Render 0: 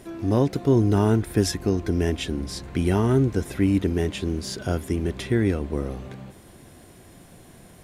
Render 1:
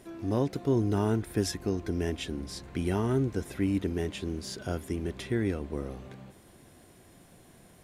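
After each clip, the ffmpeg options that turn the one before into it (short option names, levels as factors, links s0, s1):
-af "lowshelf=f=150:g=-3,volume=0.473"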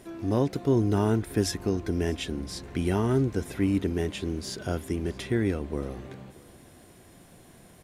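-af "aecho=1:1:629:0.0708,volume=1.41"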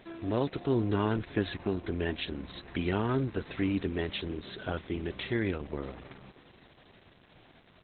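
-af "tiltshelf=f=810:g=-5" -ar 48000 -c:a libopus -b:a 8k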